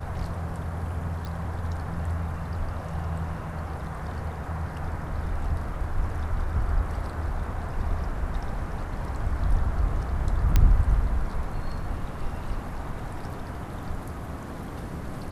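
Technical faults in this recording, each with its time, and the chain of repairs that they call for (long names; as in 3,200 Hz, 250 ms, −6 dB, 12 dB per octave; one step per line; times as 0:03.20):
0:01.25: click
0:10.56: click −7 dBFS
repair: click removal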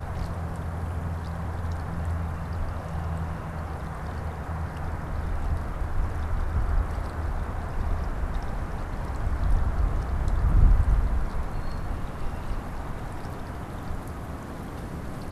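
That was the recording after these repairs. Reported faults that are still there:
none of them is left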